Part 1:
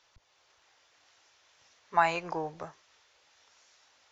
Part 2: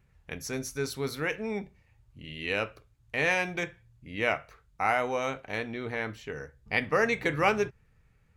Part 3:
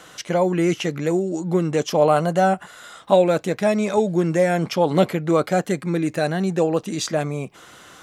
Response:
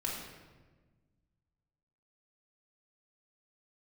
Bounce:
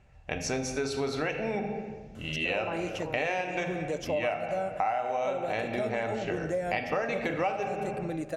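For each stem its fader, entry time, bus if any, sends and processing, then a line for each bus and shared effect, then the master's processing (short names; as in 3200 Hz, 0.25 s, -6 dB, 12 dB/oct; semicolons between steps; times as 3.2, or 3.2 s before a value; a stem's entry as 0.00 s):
-8.5 dB, 0.70 s, no send, dry
+1.5 dB, 0.00 s, send -4 dB, LPF 8300 Hz 24 dB/oct; small resonant body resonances 770/2700 Hz, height 12 dB, ringing for 35 ms
-13.5 dB, 2.15 s, send -17.5 dB, dry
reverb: on, RT60 1.3 s, pre-delay 3 ms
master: bell 590 Hz +9 dB 0.36 oct; compressor 8:1, threshold -27 dBFS, peak gain reduction 20 dB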